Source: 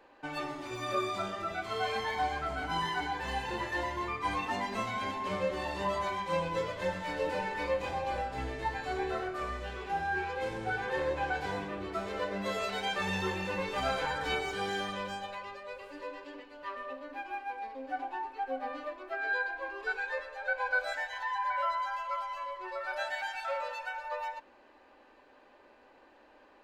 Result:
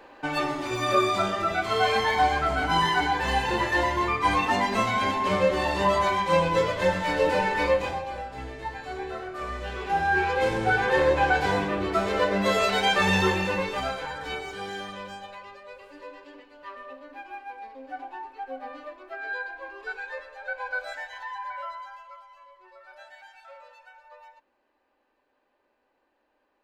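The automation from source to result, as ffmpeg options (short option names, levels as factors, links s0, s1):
-af "volume=11.9,afade=t=out:st=7.66:d=0.41:silence=0.298538,afade=t=in:st=9.26:d=1.1:silence=0.266073,afade=t=out:st=13.21:d=0.75:silence=0.251189,afade=t=out:st=21.15:d=1.07:silence=0.251189"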